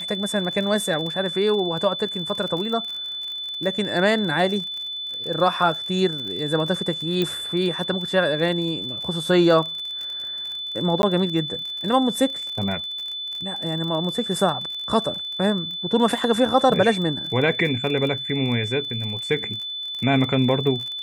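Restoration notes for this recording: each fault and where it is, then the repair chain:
crackle 34/s -29 dBFS
tone 3500 Hz -28 dBFS
7.22 pop -11 dBFS
11.02–11.03 gap 11 ms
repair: de-click; notch 3500 Hz, Q 30; interpolate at 11.02, 11 ms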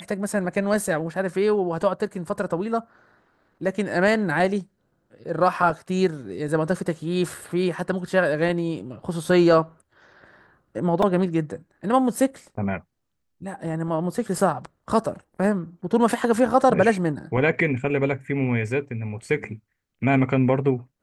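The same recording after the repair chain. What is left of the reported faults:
none

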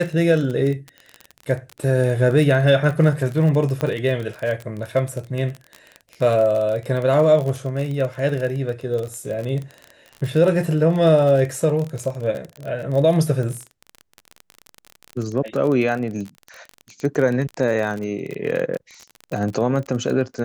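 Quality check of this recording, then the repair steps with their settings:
crackle 32/s -25 dBFS
3.81 pop -11 dBFS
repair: de-click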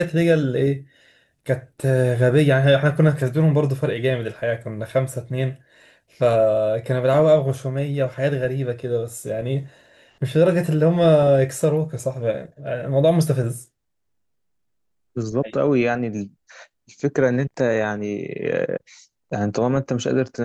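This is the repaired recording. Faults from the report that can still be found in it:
none

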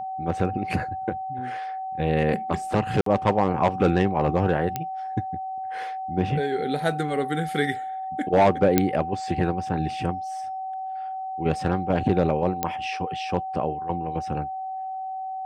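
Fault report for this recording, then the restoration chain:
tone 760 Hz -29 dBFS
3.01–3.06 gap 53 ms
4.76 pop -12 dBFS
8.78 pop -4 dBFS
12.63 pop -9 dBFS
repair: de-click; notch 760 Hz, Q 30; interpolate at 3.01, 53 ms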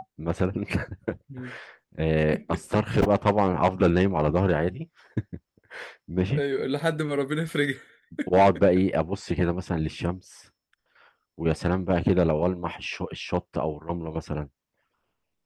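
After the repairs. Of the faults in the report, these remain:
4.76 pop
8.78 pop

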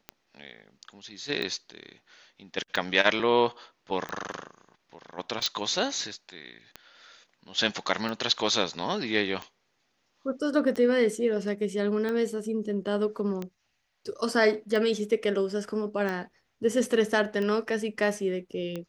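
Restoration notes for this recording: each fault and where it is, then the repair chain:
tick 45 rpm -20 dBFS
5.46 pop -11 dBFS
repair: de-click

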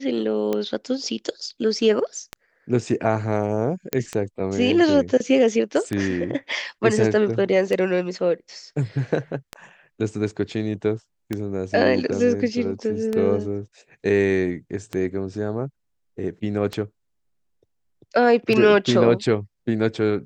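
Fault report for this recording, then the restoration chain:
tick 33 1/3 rpm -12 dBFS
3.93 pop -7 dBFS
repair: de-click

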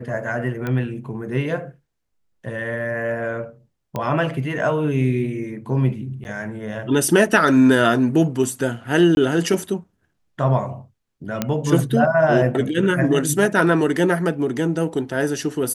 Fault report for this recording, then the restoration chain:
0.67 pop -14 dBFS
3.96 pop -13 dBFS
6.24–6.25 gap 9.9 ms
9.15–9.17 gap 21 ms
11.42 pop -6 dBFS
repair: de-click; interpolate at 6.24, 9.9 ms; interpolate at 9.15, 21 ms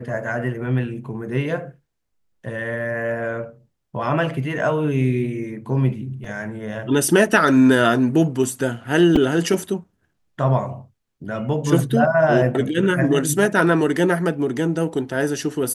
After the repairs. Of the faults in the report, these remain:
none

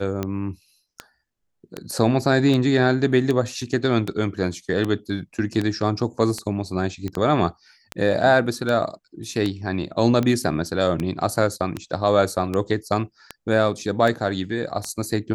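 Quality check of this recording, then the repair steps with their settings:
tick 78 rpm -12 dBFS
7.08 pop -17 dBFS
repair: de-click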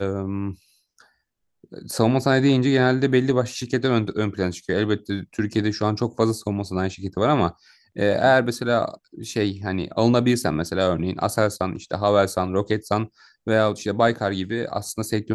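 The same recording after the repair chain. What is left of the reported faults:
none

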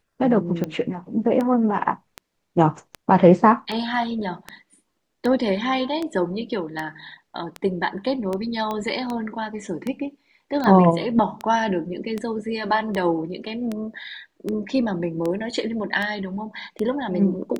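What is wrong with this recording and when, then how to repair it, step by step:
tick 78 rpm -14 dBFS
8.71 pop -15 dBFS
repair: de-click

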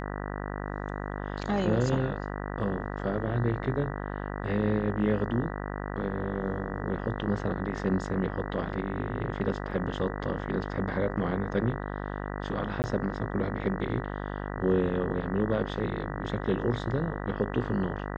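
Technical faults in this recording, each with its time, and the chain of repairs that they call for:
buzz 50 Hz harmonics 39 -35 dBFS
9.71 gap 2.5 ms
12.82–12.84 gap 19 ms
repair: de-hum 50 Hz, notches 39; interpolate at 9.71, 2.5 ms; interpolate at 12.82, 19 ms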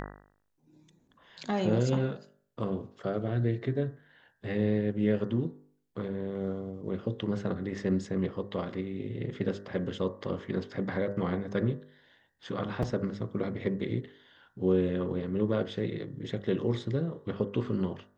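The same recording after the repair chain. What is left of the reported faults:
none

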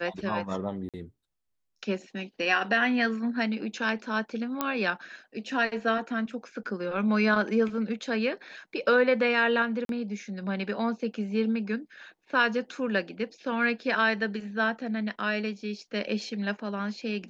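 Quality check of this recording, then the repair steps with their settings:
0.89–0.94 gap 47 ms
4.61 pop -12 dBFS
9.85–9.89 gap 42 ms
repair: de-click; interpolate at 0.89, 47 ms; interpolate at 9.85, 42 ms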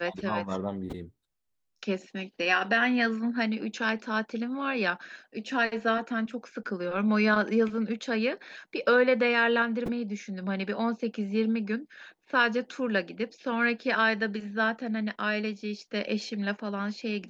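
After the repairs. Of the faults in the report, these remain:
none

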